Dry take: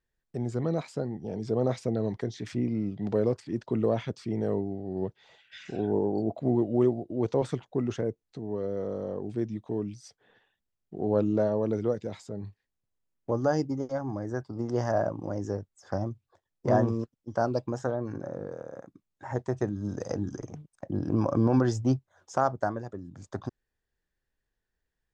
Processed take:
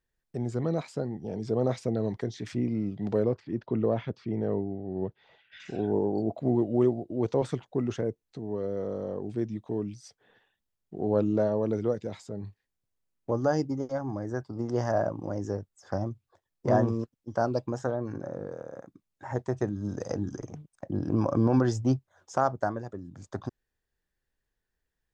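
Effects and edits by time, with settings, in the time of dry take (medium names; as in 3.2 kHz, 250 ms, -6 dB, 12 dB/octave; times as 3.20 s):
3.23–5.60 s: distance through air 220 m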